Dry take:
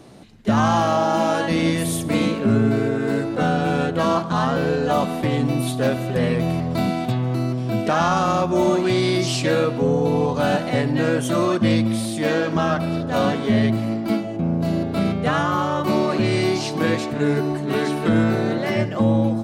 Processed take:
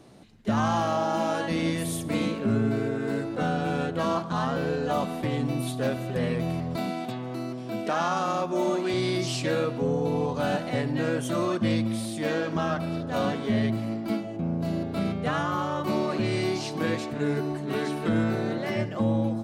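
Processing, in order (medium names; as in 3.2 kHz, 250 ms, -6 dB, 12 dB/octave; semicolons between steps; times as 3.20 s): 6.76–8.94 s: high-pass 210 Hz 12 dB/octave; trim -7 dB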